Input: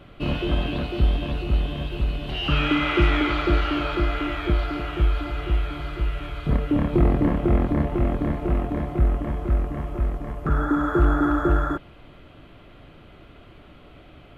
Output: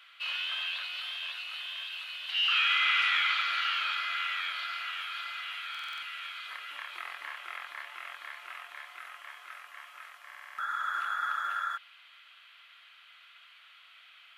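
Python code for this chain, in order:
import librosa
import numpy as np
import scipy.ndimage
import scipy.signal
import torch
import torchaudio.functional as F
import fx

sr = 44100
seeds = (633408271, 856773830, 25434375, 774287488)

y = scipy.signal.sosfilt(scipy.signal.butter(4, 1400.0, 'highpass', fs=sr, output='sos'), x)
y = fx.peak_eq(y, sr, hz=3700.0, db=3.5, octaves=1.2)
y = fx.buffer_glitch(y, sr, at_s=(5.7, 10.26), block=2048, repeats=6)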